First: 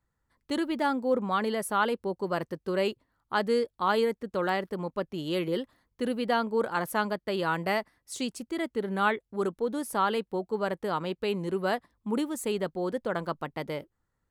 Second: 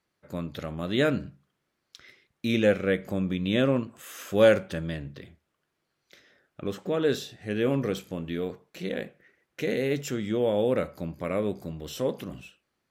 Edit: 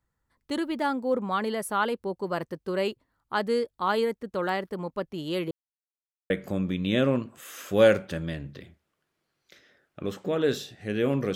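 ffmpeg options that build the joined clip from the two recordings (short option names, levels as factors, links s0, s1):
-filter_complex "[0:a]apad=whole_dur=11.35,atrim=end=11.35,asplit=2[s0][s1];[s0]atrim=end=5.51,asetpts=PTS-STARTPTS,afade=t=out:st=5.506:d=0.004:c=hsin[s2];[s1]atrim=start=5.51:end=6.3,asetpts=PTS-STARTPTS,volume=0[s3];[1:a]atrim=start=2.91:end=7.96,asetpts=PTS-STARTPTS,afade=t=in:d=0.004:c=hsin[s4];[s2][s3][s4]concat=n=3:v=0:a=1"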